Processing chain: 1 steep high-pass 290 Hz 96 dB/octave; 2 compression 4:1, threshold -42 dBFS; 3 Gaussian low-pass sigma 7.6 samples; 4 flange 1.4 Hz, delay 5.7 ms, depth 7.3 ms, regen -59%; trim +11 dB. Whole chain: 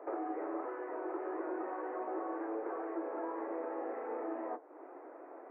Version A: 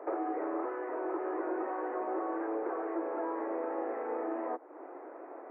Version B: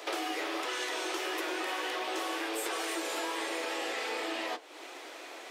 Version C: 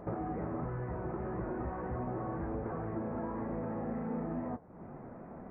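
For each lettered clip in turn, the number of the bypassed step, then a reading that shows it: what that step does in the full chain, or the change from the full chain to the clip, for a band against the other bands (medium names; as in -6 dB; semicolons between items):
4, loudness change +4.0 LU; 3, 2 kHz band +15.0 dB; 1, 250 Hz band +5.0 dB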